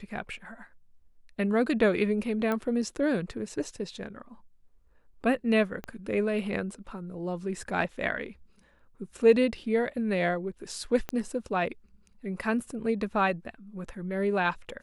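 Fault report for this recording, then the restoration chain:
2.52 s: pop -17 dBFS
5.84 s: pop -23 dBFS
11.09 s: pop -18 dBFS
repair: de-click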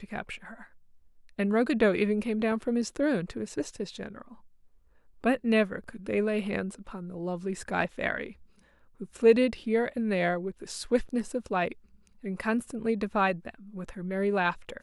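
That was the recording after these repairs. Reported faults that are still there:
5.84 s: pop
11.09 s: pop

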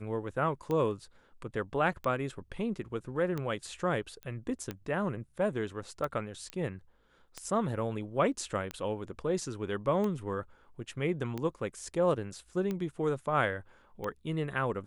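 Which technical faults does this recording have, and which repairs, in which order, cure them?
tick 45 rpm -22 dBFS
4.23 s: pop -29 dBFS
6.50 s: pop -23 dBFS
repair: de-click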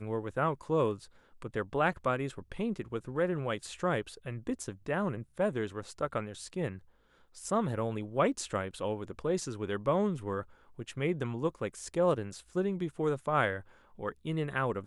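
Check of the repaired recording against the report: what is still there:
6.50 s: pop

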